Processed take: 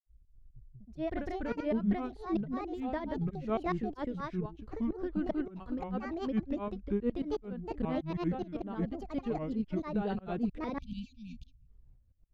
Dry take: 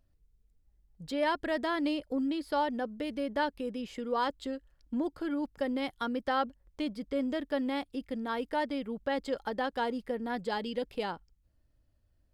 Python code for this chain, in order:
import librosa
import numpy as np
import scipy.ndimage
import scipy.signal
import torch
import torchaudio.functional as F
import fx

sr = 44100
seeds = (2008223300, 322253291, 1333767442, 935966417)

p1 = fx.tremolo_shape(x, sr, shape='saw_up', hz=3.2, depth_pct=100)
p2 = fx.granulator(p1, sr, seeds[0], grain_ms=174.0, per_s=20.0, spray_ms=513.0, spread_st=7)
p3 = fx.riaa(p2, sr, side='playback')
p4 = fx.spec_erase(p3, sr, start_s=10.79, length_s=0.88, low_hz=260.0, high_hz=2300.0)
p5 = fx.rider(p4, sr, range_db=3, speed_s=2.0)
p6 = p4 + (p5 * librosa.db_to_amplitude(3.0))
y = p6 * librosa.db_to_amplitude(-5.5)